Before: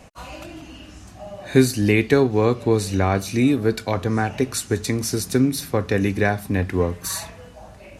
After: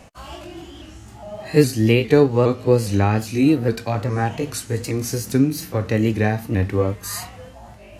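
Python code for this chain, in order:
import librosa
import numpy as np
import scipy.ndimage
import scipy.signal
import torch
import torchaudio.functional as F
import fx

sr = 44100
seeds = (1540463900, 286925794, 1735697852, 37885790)

y = fx.pitch_ramps(x, sr, semitones=2.5, every_ms=409)
y = fx.hpss(y, sr, part='harmonic', gain_db=7)
y = y * 10.0 ** (-3.0 / 20.0)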